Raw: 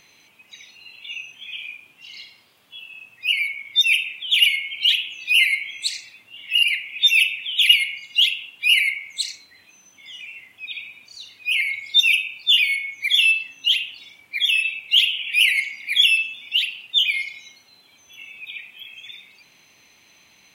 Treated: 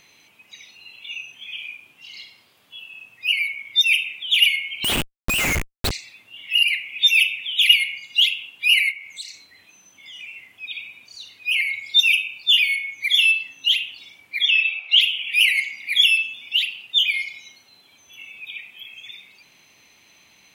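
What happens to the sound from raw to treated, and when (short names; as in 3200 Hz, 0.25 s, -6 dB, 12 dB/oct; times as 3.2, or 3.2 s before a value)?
4.84–5.91 Schmitt trigger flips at -21.5 dBFS
8.91–10.16 compressor 2:1, threshold -37 dBFS
14.41–15.01 speaker cabinet 430–5600 Hz, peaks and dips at 720 Hz +9 dB, 1300 Hz +9 dB, 2400 Hz +3 dB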